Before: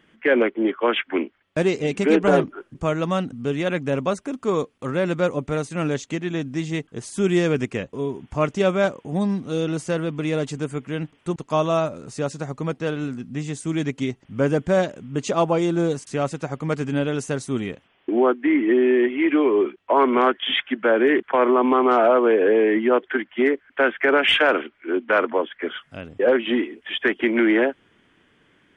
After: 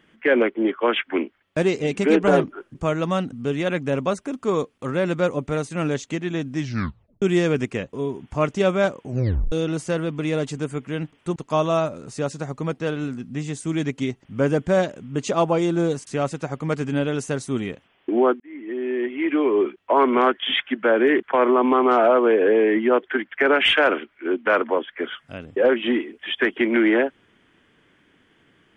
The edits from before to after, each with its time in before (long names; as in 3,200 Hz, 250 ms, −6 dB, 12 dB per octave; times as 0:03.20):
0:06.56: tape stop 0.66 s
0:09.05: tape stop 0.47 s
0:18.40–0:19.64: fade in linear
0:23.32–0:23.95: remove